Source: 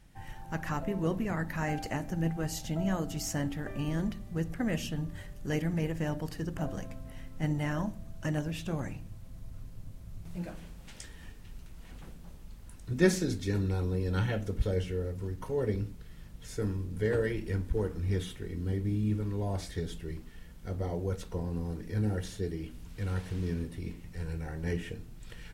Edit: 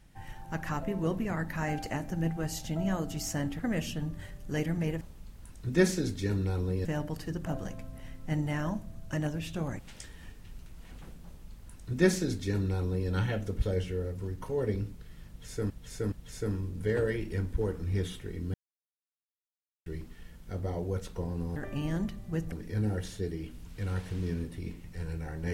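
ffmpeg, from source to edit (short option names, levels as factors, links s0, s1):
-filter_complex "[0:a]asplit=11[s0][s1][s2][s3][s4][s5][s6][s7][s8][s9][s10];[s0]atrim=end=3.592[s11];[s1]atrim=start=4.548:end=5.972[s12];[s2]atrim=start=12.248:end=14.092[s13];[s3]atrim=start=5.968:end=8.912[s14];[s4]atrim=start=10.788:end=16.702[s15];[s5]atrim=start=16.278:end=16.702[s16];[s6]atrim=start=16.278:end=18.7,asetpts=PTS-STARTPTS,afade=t=out:st=2.418:d=0.004:c=hsin[s17];[s7]atrim=start=18.7:end=20.02,asetpts=PTS-STARTPTS,volume=0[s18];[s8]atrim=start=20.02:end=21.722,asetpts=PTS-STARTPTS,afade=t=in:d=0.004:c=hsin[s19];[s9]atrim=start=3.588:end=4.552[s20];[s10]atrim=start=21.718[s21];[s11][s12]acrossfade=d=0.004:c1=hsin:c2=hsin[s22];[s22][s13]acrossfade=d=0.004:c1=hsin:c2=hsin[s23];[s23][s14]acrossfade=d=0.004:c1=hsin:c2=hsin[s24];[s24][s15]acrossfade=d=0.004:c1=hsin:c2=hsin[s25];[s25][s16]acrossfade=d=0.004:c1=hsin:c2=hsin[s26];[s17][s18][s19]concat=n=3:v=0:a=1[s27];[s26][s27]acrossfade=d=0.004:c1=hsin:c2=hsin[s28];[s28][s20]acrossfade=d=0.004:c1=hsin:c2=hsin[s29];[s29][s21]acrossfade=d=0.004:c1=hsin:c2=hsin"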